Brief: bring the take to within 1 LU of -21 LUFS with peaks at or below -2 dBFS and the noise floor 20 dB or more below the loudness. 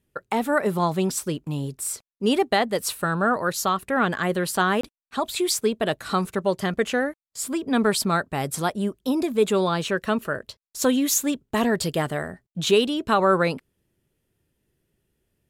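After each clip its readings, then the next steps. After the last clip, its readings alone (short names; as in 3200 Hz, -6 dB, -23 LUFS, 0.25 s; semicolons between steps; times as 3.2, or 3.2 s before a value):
dropouts 1; longest dropout 24 ms; loudness -24.0 LUFS; peak -8.5 dBFS; loudness target -21.0 LUFS
-> interpolate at 4.81, 24 ms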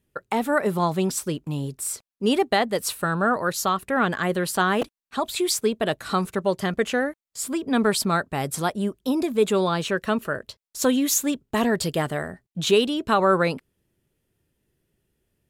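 dropouts 0; loudness -24.0 LUFS; peak -8.5 dBFS; loudness target -21.0 LUFS
-> gain +3 dB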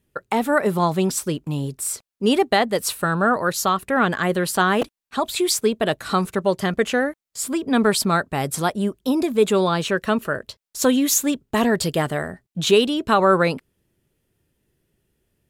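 loudness -21.0 LUFS; peak -5.5 dBFS; noise floor -87 dBFS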